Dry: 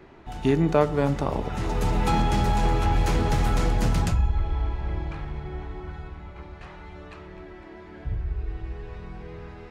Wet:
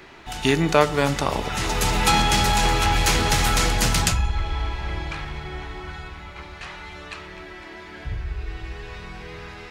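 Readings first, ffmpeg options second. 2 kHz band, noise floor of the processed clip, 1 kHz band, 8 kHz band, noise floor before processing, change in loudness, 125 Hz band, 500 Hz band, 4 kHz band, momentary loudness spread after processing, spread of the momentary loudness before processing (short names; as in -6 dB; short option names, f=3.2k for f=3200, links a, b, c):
+11.0 dB, -40 dBFS, +5.5 dB, +16.0 dB, -44 dBFS, +4.0 dB, -0.5 dB, +2.0 dB, +14.5 dB, 19 LU, 20 LU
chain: -af "tiltshelf=f=1.3k:g=-8.5,volume=8dB"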